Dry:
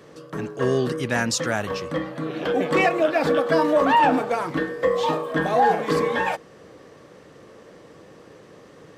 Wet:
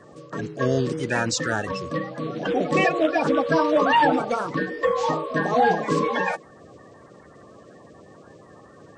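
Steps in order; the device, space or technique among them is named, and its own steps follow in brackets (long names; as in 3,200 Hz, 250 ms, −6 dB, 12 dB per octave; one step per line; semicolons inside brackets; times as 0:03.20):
clip after many re-uploads (low-pass filter 8,300 Hz 24 dB per octave; spectral magnitudes quantised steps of 30 dB)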